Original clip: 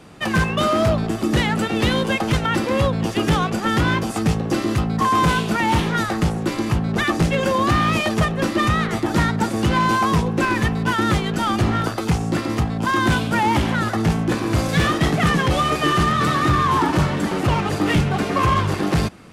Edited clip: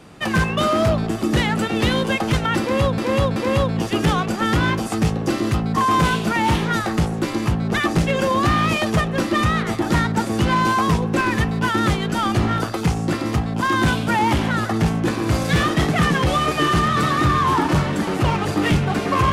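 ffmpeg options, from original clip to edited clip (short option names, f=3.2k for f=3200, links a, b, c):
-filter_complex "[0:a]asplit=3[a][b][c];[a]atrim=end=2.982[d];[b]atrim=start=2.598:end=2.982[e];[c]atrim=start=2.598[f];[d][e]acrossfade=d=0.004:c1=hsin:c2=hsin[g];[g][f]acrossfade=d=0.004:c1=hsin:c2=hsin"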